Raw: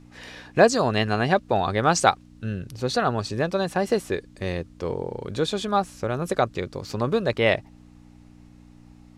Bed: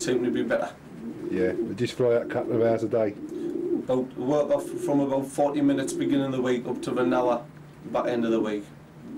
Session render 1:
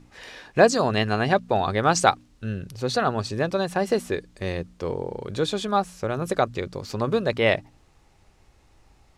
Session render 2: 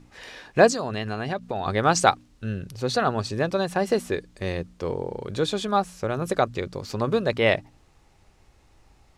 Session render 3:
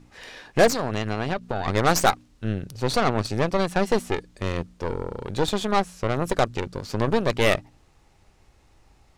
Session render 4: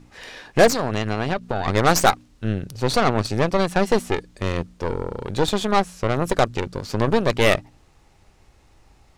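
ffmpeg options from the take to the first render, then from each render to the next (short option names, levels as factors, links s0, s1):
-af "bandreject=f=60:t=h:w=4,bandreject=f=120:t=h:w=4,bandreject=f=180:t=h:w=4,bandreject=f=240:t=h:w=4,bandreject=f=300:t=h:w=4"
-filter_complex "[0:a]asettb=1/sr,asplit=3[s0][s1][s2];[s0]atrim=end=0.724[s3];[s1]atrim=start=0.72:end=1.66,asetpts=PTS-STARTPTS,afade=t=in:d=0.004:c=qsin,afade=t=out:st=0.936:d=0.004:c=qsin,acompressor=threshold=0.0501:ratio=3:attack=3.2:release=140:knee=1:detection=peak[s4];[s2]atrim=start=1.656[s5];[s3][s4]acrossfade=d=0.004:c1=hsin:c2=qsin[s6];[s6][s5]acrossfade=d=0.004:c1=qsin:c2=hsin"
-af "asoftclip=type=tanh:threshold=0.473,aeval=exprs='0.447*(cos(1*acos(clip(val(0)/0.447,-1,1)))-cos(1*PI/2))+0.0631*(cos(8*acos(clip(val(0)/0.447,-1,1)))-cos(8*PI/2))':c=same"
-af "volume=1.41"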